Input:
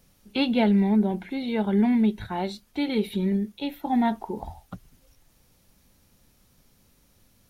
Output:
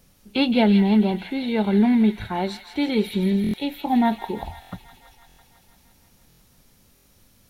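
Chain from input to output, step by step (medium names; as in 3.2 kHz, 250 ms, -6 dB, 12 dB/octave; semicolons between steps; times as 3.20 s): feedback echo behind a high-pass 166 ms, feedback 75%, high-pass 1.7 kHz, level -8 dB; buffer glitch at 3.42/4.60/5.27/6.28/6.94 s, samples 1024, times 4; trim +3.5 dB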